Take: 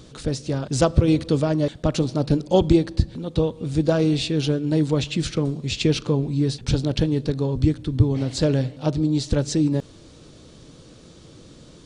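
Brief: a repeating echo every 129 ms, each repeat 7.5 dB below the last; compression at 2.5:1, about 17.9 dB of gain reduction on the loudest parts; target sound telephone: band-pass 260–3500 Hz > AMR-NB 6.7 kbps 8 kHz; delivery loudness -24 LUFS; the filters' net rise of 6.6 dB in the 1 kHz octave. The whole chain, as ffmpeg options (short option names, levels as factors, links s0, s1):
-af "equalizer=f=1000:t=o:g=9,acompressor=threshold=0.0112:ratio=2.5,highpass=260,lowpass=3500,aecho=1:1:129|258|387|516|645:0.422|0.177|0.0744|0.0312|0.0131,volume=5.96" -ar 8000 -c:a libopencore_amrnb -b:a 6700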